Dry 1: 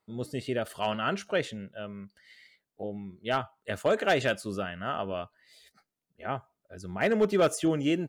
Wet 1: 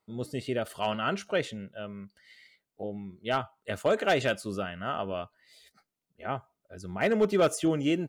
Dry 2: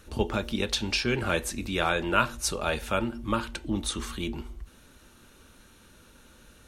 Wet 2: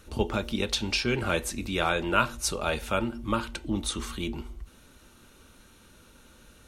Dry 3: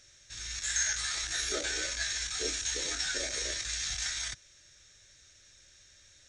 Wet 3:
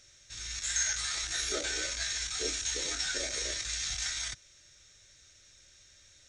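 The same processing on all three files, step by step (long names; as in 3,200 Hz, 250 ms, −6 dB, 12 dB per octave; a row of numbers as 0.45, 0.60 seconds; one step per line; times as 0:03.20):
notch filter 1,700 Hz, Q 15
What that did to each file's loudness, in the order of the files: 0.0, 0.0, 0.0 LU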